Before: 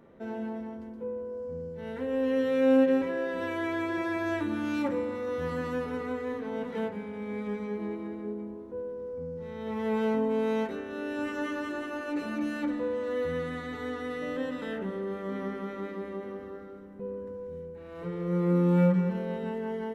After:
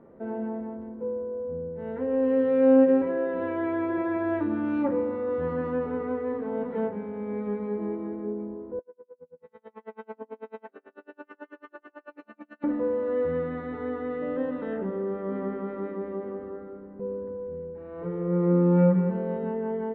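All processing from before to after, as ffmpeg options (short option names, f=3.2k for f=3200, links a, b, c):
-filter_complex "[0:a]asettb=1/sr,asplit=3[a][b][c];[a]atrim=end=8.794[d];[b]atrim=start=8.79:end=12.64,asetpts=PTS-STARTPTS,afade=t=in:d=0.004:c=qsin,afade=t=out:st=3.846:d=0.004:c=qsin,highpass=f=1.4k:p=1,aeval=exprs='val(0)*pow(10,-38*(0.5-0.5*cos(2*PI*9.1*n/s))/20)':c=same[e];[c]atrim=start=12.636[f];[d][e]acrossfade=d=0.004:c1=hsin:c2=qsin[g];[g][f]acrossfade=d=0.004:c1=qsin:c2=hsin,lowpass=1.5k,equalizer=f=440:w=0.46:g=4.5"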